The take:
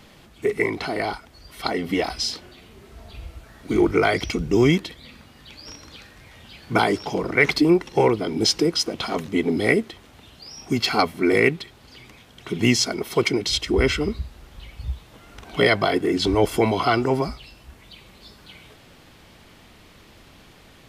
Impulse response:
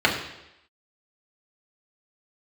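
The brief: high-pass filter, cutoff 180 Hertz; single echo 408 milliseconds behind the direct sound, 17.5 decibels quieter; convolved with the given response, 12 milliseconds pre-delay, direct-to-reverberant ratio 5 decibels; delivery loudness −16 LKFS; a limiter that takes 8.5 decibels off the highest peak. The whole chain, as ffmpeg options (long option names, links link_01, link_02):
-filter_complex "[0:a]highpass=180,alimiter=limit=-12dB:level=0:latency=1,aecho=1:1:408:0.133,asplit=2[link_01][link_02];[1:a]atrim=start_sample=2205,adelay=12[link_03];[link_02][link_03]afir=irnorm=-1:irlink=0,volume=-24dB[link_04];[link_01][link_04]amix=inputs=2:normalize=0,volume=7dB"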